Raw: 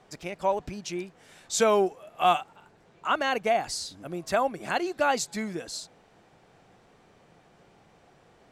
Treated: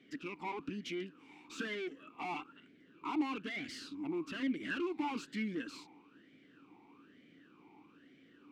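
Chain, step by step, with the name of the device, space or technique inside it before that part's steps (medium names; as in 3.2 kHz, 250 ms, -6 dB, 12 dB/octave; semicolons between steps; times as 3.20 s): talk box (valve stage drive 37 dB, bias 0.75; talking filter i-u 1.1 Hz); trim +15 dB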